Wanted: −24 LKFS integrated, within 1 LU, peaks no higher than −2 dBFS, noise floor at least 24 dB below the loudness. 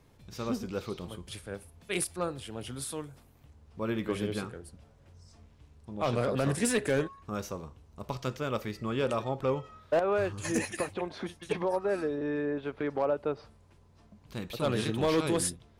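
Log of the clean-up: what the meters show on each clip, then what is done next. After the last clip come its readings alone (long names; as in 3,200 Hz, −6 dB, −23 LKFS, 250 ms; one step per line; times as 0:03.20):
share of clipped samples 0.3%; peaks flattened at −20.0 dBFS; integrated loudness −32.5 LKFS; sample peak −20.0 dBFS; target loudness −24.0 LKFS
→ clipped peaks rebuilt −20 dBFS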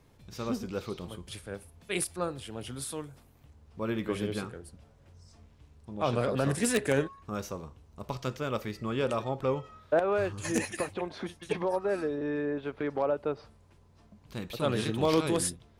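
share of clipped samples 0.0%; integrated loudness −32.0 LKFS; sample peak −11.0 dBFS; target loudness −24.0 LKFS
→ level +8 dB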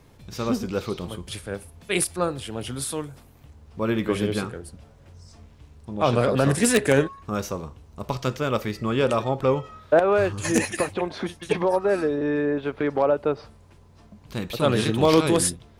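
integrated loudness −24.0 LKFS; sample peak −3.0 dBFS; background noise floor −52 dBFS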